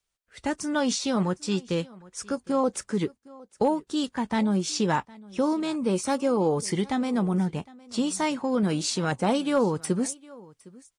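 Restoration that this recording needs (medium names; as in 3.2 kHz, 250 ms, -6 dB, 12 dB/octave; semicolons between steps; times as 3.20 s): clip repair -14 dBFS; inverse comb 760 ms -22.5 dB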